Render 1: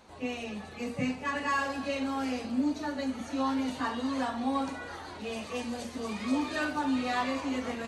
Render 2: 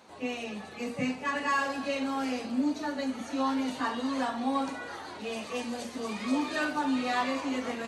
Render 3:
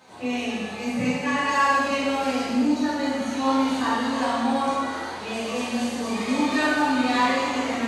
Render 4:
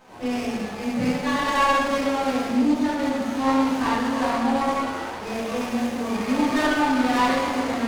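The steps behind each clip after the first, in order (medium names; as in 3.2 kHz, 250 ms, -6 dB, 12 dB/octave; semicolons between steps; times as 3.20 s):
Bessel high-pass 170 Hz, order 2; trim +1.5 dB
gated-style reverb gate 470 ms falling, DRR -7.5 dB
sliding maximum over 9 samples; trim +1.5 dB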